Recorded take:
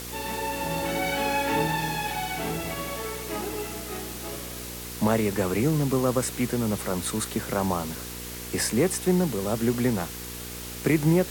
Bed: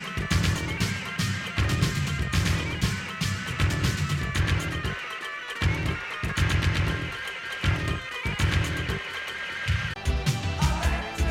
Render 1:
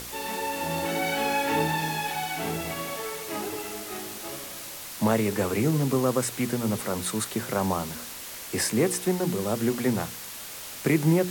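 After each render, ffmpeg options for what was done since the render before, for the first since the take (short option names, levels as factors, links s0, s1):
-af "bandreject=f=60:t=h:w=4,bandreject=f=120:t=h:w=4,bandreject=f=180:t=h:w=4,bandreject=f=240:t=h:w=4,bandreject=f=300:t=h:w=4,bandreject=f=360:t=h:w=4,bandreject=f=420:t=h:w=4,bandreject=f=480:t=h:w=4"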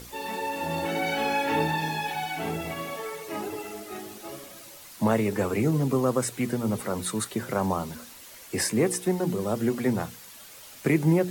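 -af "afftdn=nr=9:nf=-39"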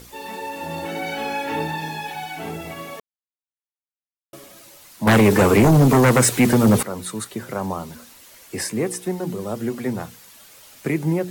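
-filter_complex "[0:a]asettb=1/sr,asplit=3[s0][s1][s2];[s0]atrim=end=5.074[s3];[s1]atrim=start=5.07:end=6.83,asetpts=PTS-STARTPTS,afade=t=in:d=0.004:c=qsin,afade=t=out:st=1.756:d=0.004:c=qsin,aeval=exprs='0.335*sin(PI/2*3.55*val(0)/0.335)':c=same[s4];[s2]atrim=start=6.826[s5];[s3][s4]acrossfade=d=0.004:c1=hsin:c2=qsin[s6];[s6][s5]acrossfade=d=0.004:c1=qsin:c2=hsin,asplit=3[s7][s8][s9];[s7]atrim=end=3,asetpts=PTS-STARTPTS,afade=t=out:st=2.996:d=0.004:c=hsin[s10];[s8]atrim=start=3:end=4.33,asetpts=PTS-STARTPTS,volume=0[s11];[s9]atrim=start=4.33,asetpts=PTS-STARTPTS,afade=t=in:d=0.004:c=hsin[s12];[s10][s11][s12]concat=n=3:v=0:a=1"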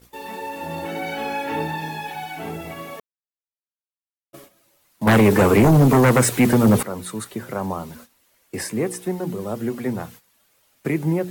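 -af "agate=range=0.2:threshold=0.00794:ratio=16:detection=peak,equalizer=f=5900:w=0.61:g=-4"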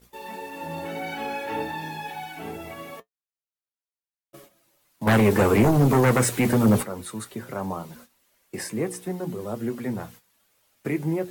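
-af "flanger=delay=4.8:depth=5.9:regen=-55:speed=0.24:shape=triangular"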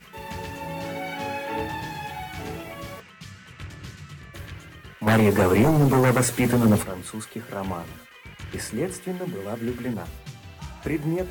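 -filter_complex "[1:a]volume=0.188[s0];[0:a][s0]amix=inputs=2:normalize=0"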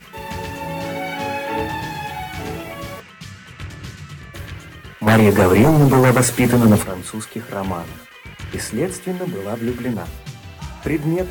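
-af "volume=2"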